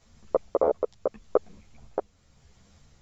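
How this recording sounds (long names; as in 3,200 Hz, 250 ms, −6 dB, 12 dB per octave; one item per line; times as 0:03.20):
tremolo triangle 0.83 Hz, depth 55%
a shimmering, thickened sound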